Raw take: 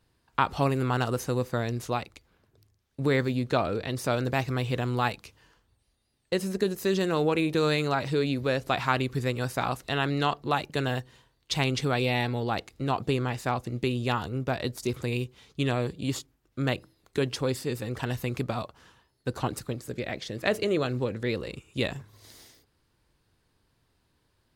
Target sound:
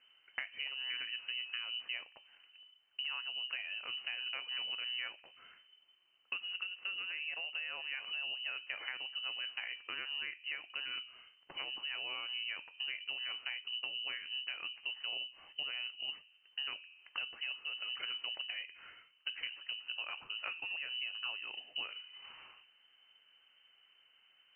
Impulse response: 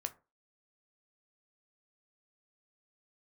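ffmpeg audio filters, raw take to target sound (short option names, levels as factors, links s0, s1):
-filter_complex "[0:a]bandreject=f=84.44:t=h:w=4,bandreject=f=168.88:t=h:w=4,bandreject=f=253.32:t=h:w=4,bandreject=f=337.76:t=h:w=4,bandreject=f=422.2:t=h:w=4,bandreject=f=506.64:t=h:w=4,bandreject=f=591.08:t=h:w=4,bandreject=f=675.52:t=h:w=4,bandreject=f=759.96:t=h:w=4,acompressor=threshold=0.00794:ratio=10,asplit=2[s0][s1];[1:a]atrim=start_sample=2205,lowpass=3100[s2];[s1][s2]afir=irnorm=-1:irlink=0,volume=1.06[s3];[s0][s3]amix=inputs=2:normalize=0,lowpass=f=2600:t=q:w=0.5098,lowpass=f=2600:t=q:w=0.6013,lowpass=f=2600:t=q:w=0.9,lowpass=f=2600:t=q:w=2.563,afreqshift=-3100,volume=0.794"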